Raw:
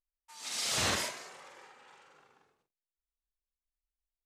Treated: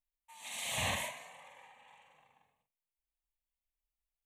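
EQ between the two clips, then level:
phaser with its sweep stopped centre 1,400 Hz, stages 6
0.0 dB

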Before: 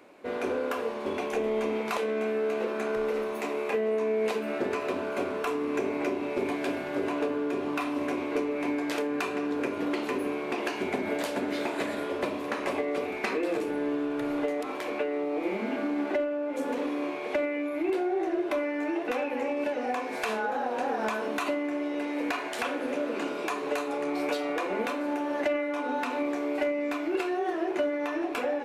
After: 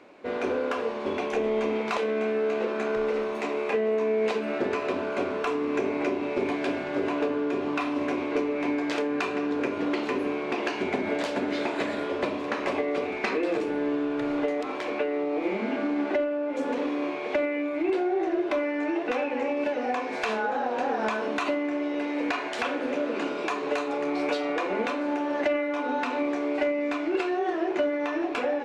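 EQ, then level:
high-frequency loss of the air 140 metres
high-shelf EQ 5,600 Hz +11.5 dB
+2.5 dB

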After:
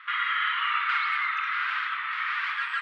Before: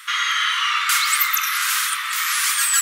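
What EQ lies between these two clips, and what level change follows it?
high-frequency loss of the air 410 metres
dynamic equaliser 1,100 Hz, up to −4 dB, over −42 dBFS, Q 4.4
low-pass filter 2,800 Hz 12 dB per octave
0.0 dB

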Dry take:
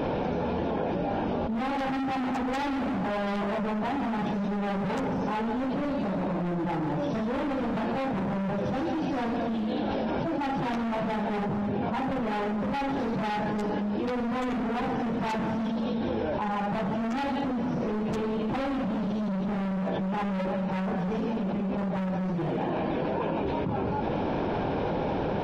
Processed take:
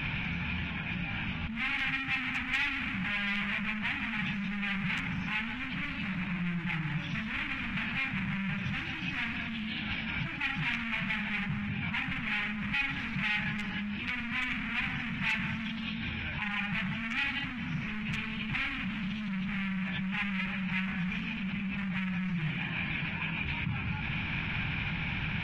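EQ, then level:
drawn EQ curve 160 Hz 0 dB, 490 Hz −30 dB, 2,400 Hz +14 dB, 4,500 Hz −4 dB
0.0 dB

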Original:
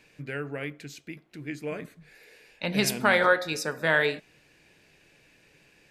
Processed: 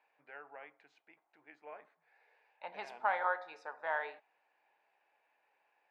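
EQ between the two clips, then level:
four-pole ladder band-pass 920 Hz, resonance 65%
0.0 dB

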